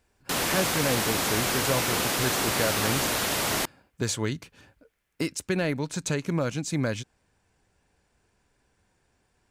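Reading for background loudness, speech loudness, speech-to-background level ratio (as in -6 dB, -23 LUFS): -25.5 LUFS, -30.5 LUFS, -5.0 dB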